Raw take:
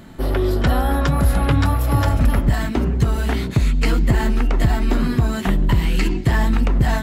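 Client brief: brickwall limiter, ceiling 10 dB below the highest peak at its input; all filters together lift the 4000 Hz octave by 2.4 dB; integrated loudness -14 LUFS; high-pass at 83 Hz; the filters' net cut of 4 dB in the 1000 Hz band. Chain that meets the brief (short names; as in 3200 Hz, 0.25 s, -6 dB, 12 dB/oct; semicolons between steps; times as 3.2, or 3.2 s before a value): HPF 83 Hz; bell 1000 Hz -5.5 dB; bell 4000 Hz +3.5 dB; gain +11 dB; limiter -4.5 dBFS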